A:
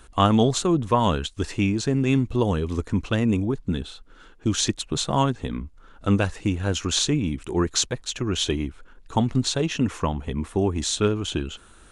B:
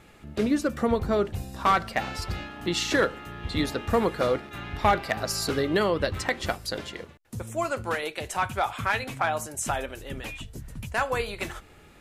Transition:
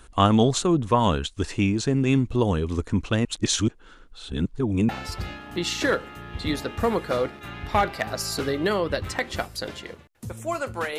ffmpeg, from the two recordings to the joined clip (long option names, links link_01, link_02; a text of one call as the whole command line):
ffmpeg -i cue0.wav -i cue1.wav -filter_complex "[0:a]apad=whole_dur=10.98,atrim=end=10.98,asplit=2[link_01][link_02];[link_01]atrim=end=3.252[link_03];[link_02]atrim=start=3.248:end=4.892,asetpts=PTS-STARTPTS,areverse[link_04];[1:a]atrim=start=1.988:end=8.08[link_05];[link_03][link_04]acrossfade=duration=0.004:curve1=hsin:curve2=hsin[link_06];[link_06][link_05]acrossfade=duration=0.004:curve1=hsin:curve2=hsin" out.wav